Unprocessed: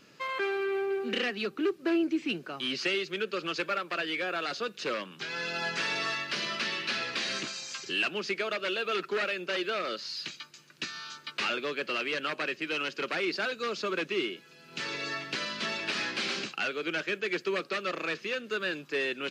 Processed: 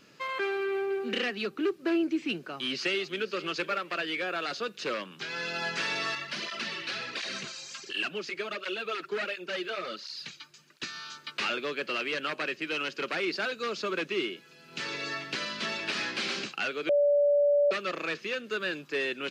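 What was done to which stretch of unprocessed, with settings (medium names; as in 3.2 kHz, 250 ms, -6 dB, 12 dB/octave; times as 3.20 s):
2.44–3.28 s: echo throw 490 ms, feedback 25%, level -17 dB
6.15–10.83 s: cancelling through-zero flanger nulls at 1.4 Hz, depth 5.3 ms
16.89–17.71 s: bleep 578 Hz -20 dBFS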